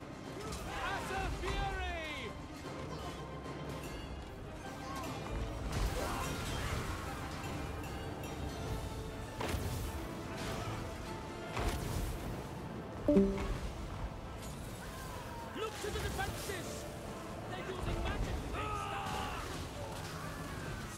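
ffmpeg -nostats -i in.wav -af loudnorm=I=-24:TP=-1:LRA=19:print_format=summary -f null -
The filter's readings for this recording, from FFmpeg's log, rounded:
Input Integrated:    -40.3 LUFS
Input True Peak:     -16.1 dBTP
Input LRA:             4.2 LU
Input Threshold:     -50.3 LUFS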